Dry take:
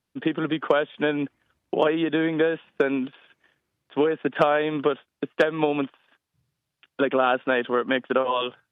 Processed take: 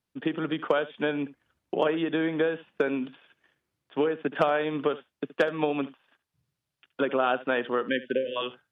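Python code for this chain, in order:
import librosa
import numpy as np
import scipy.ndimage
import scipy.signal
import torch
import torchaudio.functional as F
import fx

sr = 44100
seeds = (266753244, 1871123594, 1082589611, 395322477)

y = fx.spec_erase(x, sr, start_s=7.88, length_s=0.48, low_hz=620.0, high_hz=1500.0)
y = y + 10.0 ** (-17.5 / 20.0) * np.pad(y, (int(72 * sr / 1000.0), 0))[:len(y)]
y = y * 10.0 ** (-4.0 / 20.0)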